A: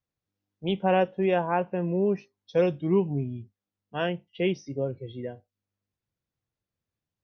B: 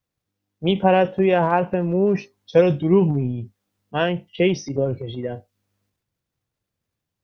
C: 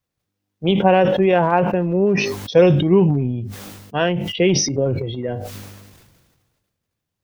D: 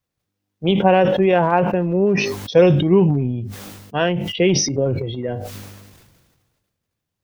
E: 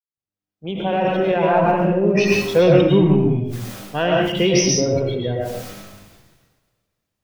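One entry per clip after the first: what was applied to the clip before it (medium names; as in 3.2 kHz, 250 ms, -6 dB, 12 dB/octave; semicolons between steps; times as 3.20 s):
transient shaper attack +5 dB, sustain +9 dB; trim +5 dB
decay stretcher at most 37 dB/s; trim +1.5 dB
no audible change
fade-in on the opening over 1.90 s; in parallel at -8 dB: saturation -12.5 dBFS, distortion -12 dB; on the sum: algorithmic reverb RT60 0.67 s, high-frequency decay 0.8×, pre-delay 70 ms, DRR -2.5 dB; trim -4.5 dB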